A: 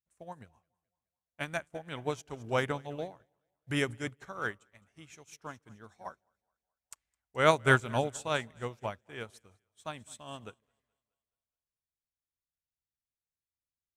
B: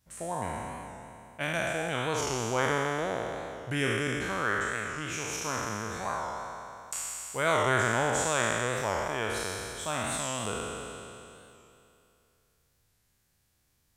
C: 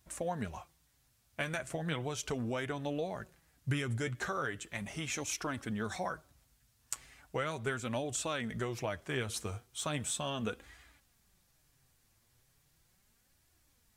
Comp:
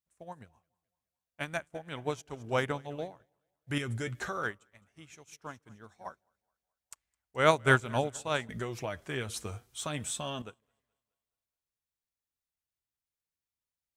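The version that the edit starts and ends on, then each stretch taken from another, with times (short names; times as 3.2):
A
3.78–4.43 from C
8.49–10.42 from C
not used: B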